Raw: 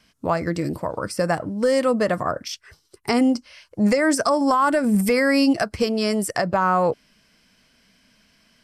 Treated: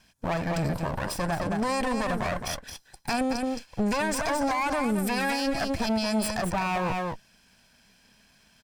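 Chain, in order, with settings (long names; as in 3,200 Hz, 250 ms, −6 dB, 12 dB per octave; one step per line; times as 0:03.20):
lower of the sound and its delayed copy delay 1.2 ms
single-tap delay 218 ms −8.5 dB
brickwall limiter −19 dBFS, peak gain reduction 9.5 dB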